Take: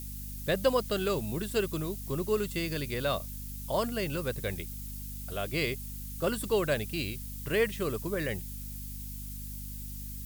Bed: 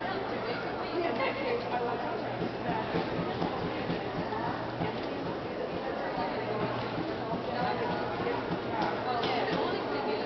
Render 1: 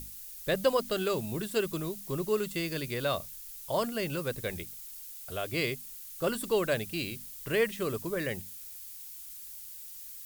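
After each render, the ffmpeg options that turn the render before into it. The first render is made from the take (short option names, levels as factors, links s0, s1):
-af "bandreject=f=50:t=h:w=6,bandreject=f=100:t=h:w=6,bandreject=f=150:t=h:w=6,bandreject=f=200:t=h:w=6,bandreject=f=250:t=h:w=6"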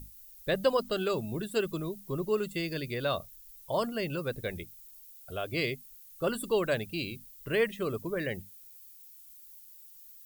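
-af "afftdn=nr=12:nf=-45"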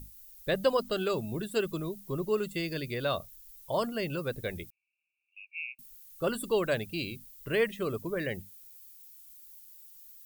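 -filter_complex "[0:a]asettb=1/sr,asplit=3[s0][s1][s2];[s0]atrim=end=4.704[s3];[s1]atrim=start=4.7:end=5.79,asetpts=PTS-STARTPTS,afade=t=in:d=0.004:c=qsin,afade=t=out:st=1.086:d=0.004:c=qsin,asuperpass=centerf=2500:order=12:qfactor=4.5[s4];[s2]atrim=start=5.786[s5];[s3][s4]acrossfade=d=0.004:c1=hsin:c2=qsin[s6];[s6][s5]acrossfade=d=0.004:c1=qsin:c2=hsin"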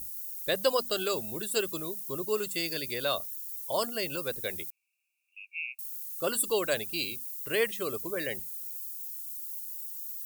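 -af "bass=f=250:g=-10,treble=f=4000:g=13"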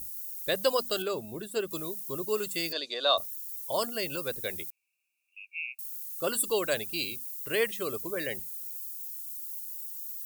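-filter_complex "[0:a]asettb=1/sr,asplit=3[s0][s1][s2];[s0]atrim=end=1.024[s3];[s1]atrim=start=1.02:end=1.71,asetpts=PTS-STARTPTS,afade=t=in:d=0.004:c=qsin,afade=t=out:st=0.686:d=0.004:c=qsin,highshelf=f=2400:g=-10.5[s4];[s2]atrim=start=1.706[s5];[s3][s4]acrossfade=d=0.004:c1=hsin:c2=qsin[s6];[s6][s5]acrossfade=d=0.004:c1=qsin:c2=hsin,asettb=1/sr,asplit=3[s7][s8][s9];[s7]atrim=end=2.724[s10];[s8]atrim=start=2.72:end=3.18,asetpts=PTS-STARTPTS,afade=t=in:d=0.004:c=qsin,afade=t=out:st=0.456:d=0.004:c=qsin,highpass=f=290:w=0.5412,highpass=f=290:w=1.3066,equalizer=f=370:t=q:w=4:g=-5,equalizer=f=680:t=q:w=4:g=8,equalizer=f=1100:t=q:w=4:g=7,equalizer=f=2200:t=q:w=4:g=-8,equalizer=f=3800:t=q:w=4:g=10,equalizer=f=5400:t=q:w=4:g=-4,lowpass=f=6200:w=0.5412,lowpass=f=6200:w=1.3066[s11];[s9]atrim=start=3.176[s12];[s10][s11]acrossfade=d=0.004:c1=hsin:c2=qsin[s13];[s13][s12]acrossfade=d=0.004:c1=qsin:c2=hsin"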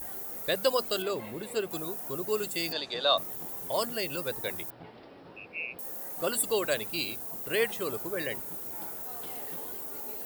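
-filter_complex "[1:a]volume=0.158[s0];[0:a][s0]amix=inputs=2:normalize=0"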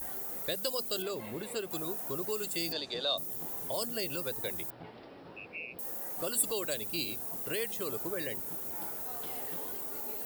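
-filter_complex "[0:a]acrossover=split=580|3800[s0][s1][s2];[s0]alimiter=level_in=2.51:limit=0.0631:level=0:latency=1:release=208,volume=0.398[s3];[s1]acompressor=threshold=0.00794:ratio=6[s4];[s3][s4][s2]amix=inputs=3:normalize=0"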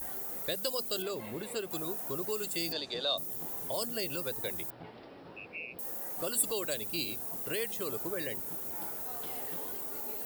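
-af anull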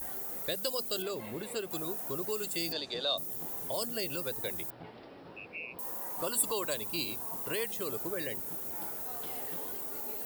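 -filter_complex "[0:a]asettb=1/sr,asplit=3[s0][s1][s2];[s0]atrim=end=5.634[s3];[s1]atrim=start=5.63:end=7.65,asetpts=PTS-STARTPTS,afade=t=in:d=0.004:c=qsin,afade=t=out:st=2.016:d=0.004:c=qsin,equalizer=f=1000:t=o:w=0.36:g=11.5[s4];[s2]atrim=start=7.646[s5];[s3][s4]acrossfade=d=0.004:c1=hsin:c2=qsin[s6];[s6][s5]acrossfade=d=0.004:c1=qsin:c2=hsin"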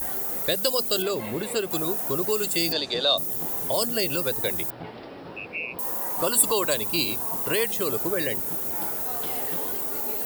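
-af "volume=3.16"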